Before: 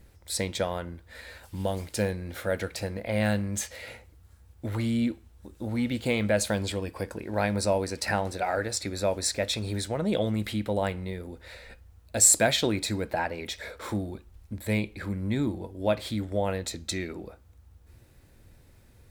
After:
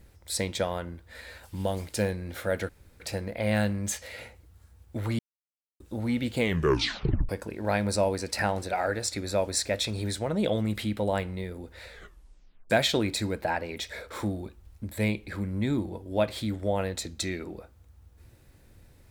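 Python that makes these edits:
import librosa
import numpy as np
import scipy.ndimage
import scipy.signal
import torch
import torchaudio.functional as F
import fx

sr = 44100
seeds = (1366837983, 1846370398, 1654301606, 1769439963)

y = fx.edit(x, sr, fx.insert_room_tone(at_s=2.69, length_s=0.31),
    fx.silence(start_s=4.88, length_s=0.61),
    fx.tape_stop(start_s=6.09, length_s=0.89),
    fx.tape_stop(start_s=11.58, length_s=0.81), tone=tone)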